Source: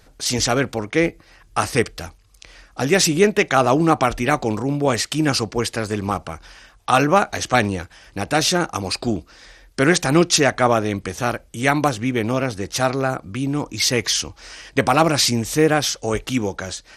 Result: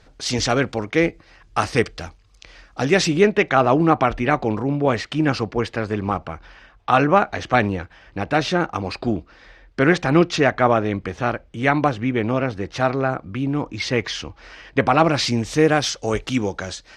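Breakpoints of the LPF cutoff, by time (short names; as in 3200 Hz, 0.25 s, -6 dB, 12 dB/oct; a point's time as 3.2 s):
2.81 s 5300 Hz
3.56 s 2800 Hz
14.9 s 2800 Hz
15.65 s 6000 Hz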